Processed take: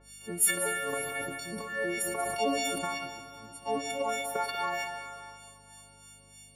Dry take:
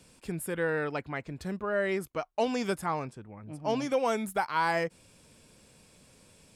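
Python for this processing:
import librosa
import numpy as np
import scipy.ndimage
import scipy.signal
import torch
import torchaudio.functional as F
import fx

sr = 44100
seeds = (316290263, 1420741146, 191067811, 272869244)

y = fx.freq_snap(x, sr, grid_st=4)
y = fx.highpass(y, sr, hz=530.0, slope=6)
y = fx.transient(y, sr, attack_db=-7, sustain_db=9)
y = fx.rider(y, sr, range_db=4, speed_s=2.0)
y = fx.transient(y, sr, attack_db=9, sustain_db=-9)
y = fx.harmonic_tremolo(y, sr, hz=3.2, depth_pct=100, crossover_hz=1600.0)
y = fx.add_hum(y, sr, base_hz=50, snr_db=25)
y = y + 10.0 ** (-12.5 / 20.0) * np.pad(y, (int(189 * sr / 1000.0), 0))[:len(y)]
y = fx.rev_plate(y, sr, seeds[0], rt60_s=2.8, hf_ratio=0.95, predelay_ms=0, drr_db=7.5)
y = fx.sustainer(y, sr, db_per_s=32.0, at=(0.64, 2.98))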